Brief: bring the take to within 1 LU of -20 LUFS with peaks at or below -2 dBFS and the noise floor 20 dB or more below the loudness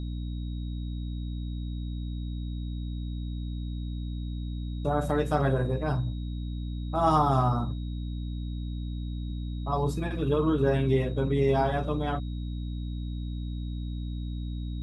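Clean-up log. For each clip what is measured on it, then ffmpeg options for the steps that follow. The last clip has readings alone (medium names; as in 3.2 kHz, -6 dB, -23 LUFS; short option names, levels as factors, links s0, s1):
hum 60 Hz; highest harmonic 300 Hz; hum level -31 dBFS; steady tone 3.8 kHz; tone level -53 dBFS; loudness -30.5 LUFS; peak level -10.5 dBFS; loudness target -20.0 LUFS
-> -af "bandreject=f=60:t=h:w=6,bandreject=f=120:t=h:w=6,bandreject=f=180:t=h:w=6,bandreject=f=240:t=h:w=6,bandreject=f=300:t=h:w=6"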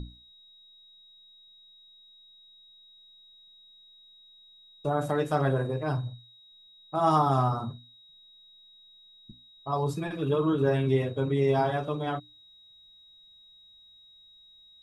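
hum not found; steady tone 3.8 kHz; tone level -53 dBFS
-> -af "bandreject=f=3800:w=30"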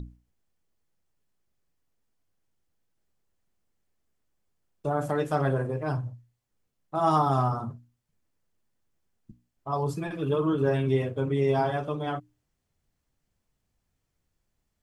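steady tone not found; loudness -27.5 LUFS; peak level -11.5 dBFS; loudness target -20.0 LUFS
-> -af "volume=2.37"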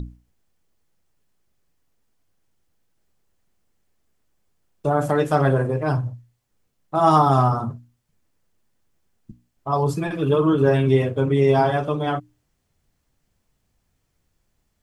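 loudness -20.0 LUFS; peak level -4.0 dBFS; noise floor -72 dBFS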